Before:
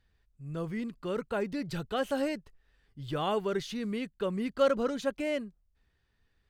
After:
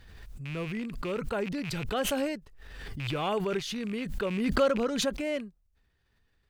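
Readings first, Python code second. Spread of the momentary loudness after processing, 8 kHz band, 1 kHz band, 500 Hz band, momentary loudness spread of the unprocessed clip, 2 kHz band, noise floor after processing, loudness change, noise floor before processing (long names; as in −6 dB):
14 LU, +10.0 dB, +1.0 dB, +0.5 dB, 10 LU, +4.0 dB, −71 dBFS, +1.5 dB, −73 dBFS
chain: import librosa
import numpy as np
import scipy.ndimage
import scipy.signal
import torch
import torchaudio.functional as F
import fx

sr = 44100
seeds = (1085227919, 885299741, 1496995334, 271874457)

y = fx.rattle_buzz(x, sr, strikes_db=-40.0, level_db=-32.0)
y = fx.pre_swell(y, sr, db_per_s=35.0)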